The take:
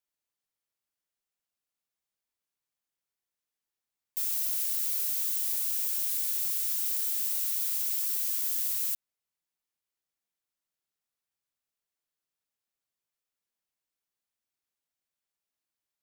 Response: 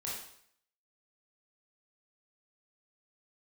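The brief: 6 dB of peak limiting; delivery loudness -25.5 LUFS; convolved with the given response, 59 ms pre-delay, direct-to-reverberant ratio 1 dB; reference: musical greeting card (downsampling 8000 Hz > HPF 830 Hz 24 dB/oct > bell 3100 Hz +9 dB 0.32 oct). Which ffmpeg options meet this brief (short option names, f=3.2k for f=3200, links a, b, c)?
-filter_complex "[0:a]alimiter=limit=-23dB:level=0:latency=1,asplit=2[a][b];[1:a]atrim=start_sample=2205,adelay=59[c];[b][c]afir=irnorm=-1:irlink=0,volume=-2.5dB[d];[a][d]amix=inputs=2:normalize=0,aresample=8000,aresample=44100,highpass=f=830:w=0.5412,highpass=f=830:w=1.3066,equalizer=f=3.1k:t=o:w=0.32:g=9,volume=21dB"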